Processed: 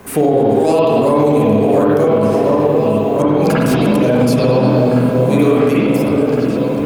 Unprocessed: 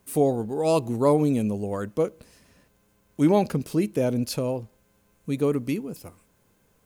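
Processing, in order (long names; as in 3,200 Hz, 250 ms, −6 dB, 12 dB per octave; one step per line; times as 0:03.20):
mu-law and A-law mismatch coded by mu
0:01.37–0:01.99: parametric band 14,000 Hz +8.5 dB 0.26 octaves
0:03.22–0:04.04: compressor whose output falls as the input rises −26 dBFS, ratio −0.5
low-shelf EQ 210 Hz −6.5 dB
echo whose low-pass opens from repeat to repeat 706 ms, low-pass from 750 Hz, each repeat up 1 octave, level −6 dB
spring reverb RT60 1.6 s, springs 47/57 ms, chirp 65 ms, DRR −8.5 dB
brickwall limiter −12.5 dBFS, peak gain reduction 10 dB
0:04.61–0:05.67: double-tracking delay 24 ms −4.5 dB
multiband upward and downward compressor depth 40%
level +8 dB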